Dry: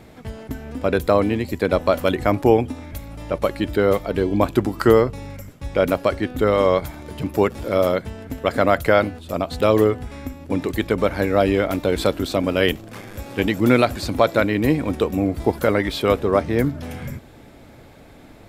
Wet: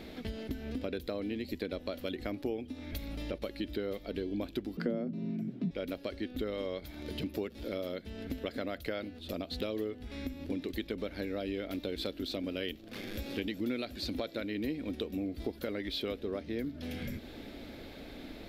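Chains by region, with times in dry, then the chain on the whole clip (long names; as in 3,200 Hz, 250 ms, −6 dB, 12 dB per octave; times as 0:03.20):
0:04.77–0:05.71: RIAA equalisation playback + frequency shifter +120 Hz
whole clip: octave-band graphic EQ 125/250/1,000/4,000/8,000 Hz −11/+4/−7/+8/−10 dB; downward compressor 4 to 1, threshold −35 dBFS; dynamic equaliser 1,000 Hz, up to −6 dB, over −51 dBFS, Q 0.98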